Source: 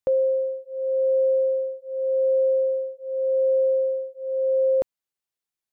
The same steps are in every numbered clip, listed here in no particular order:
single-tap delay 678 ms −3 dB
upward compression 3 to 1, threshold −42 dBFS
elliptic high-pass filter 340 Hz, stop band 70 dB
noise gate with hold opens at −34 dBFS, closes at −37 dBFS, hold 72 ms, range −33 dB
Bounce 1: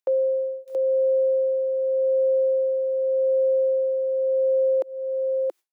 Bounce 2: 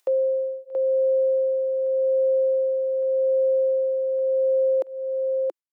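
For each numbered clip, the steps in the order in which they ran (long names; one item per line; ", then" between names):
upward compression, then single-tap delay, then noise gate with hold, then elliptic high-pass filter
noise gate with hold, then single-tap delay, then upward compression, then elliptic high-pass filter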